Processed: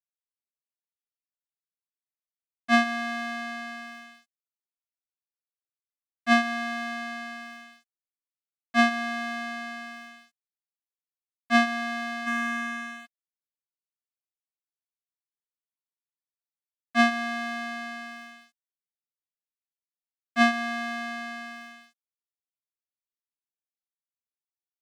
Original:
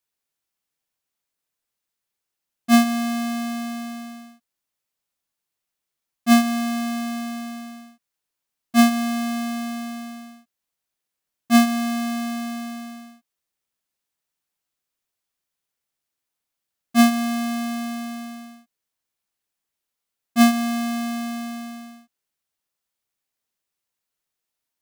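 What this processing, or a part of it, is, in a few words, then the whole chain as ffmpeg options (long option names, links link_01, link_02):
pocket radio on a weak battery: -filter_complex "[0:a]asplit=3[link_01][link_02][link_03];[link_01]afade=type=out:start_time=12.26:duration=0.02[link_04];[link_02]equalizer=frequency=250:width_type=o:width=1:gain=8,equalizer=frequency=500:width_type=o:width=1:gain=-12,equalizer=frequency=1000:width_type=o:width=1:gain=12,equalizer=frequency=2000:width_type=o:width=1:gain=8,equalizer=frequency=4000:width_type=o:width=1:gain=-5,equalizer=frequency=8000:width_type=o:width=1:gain=12,afade=type=in:start_time=12.26:duration=0.02,afade=type=out:start_time=13.05:duration=0.02[link_05];[link_03]afade=type=in:start_time=13.05:duration=0.02[link_06];[link_04][link_05][link_06]amix=inputs=3:normalize=0,highpass=340,lowpass=3900,aeval=exprs='sgn(val(0))*max(abs(val(0))-0.0112,0)':channel_layout=same,equalizer=frequency=1800:width_type=o:width=0.46:gain=7.5,volume=-1.5dB"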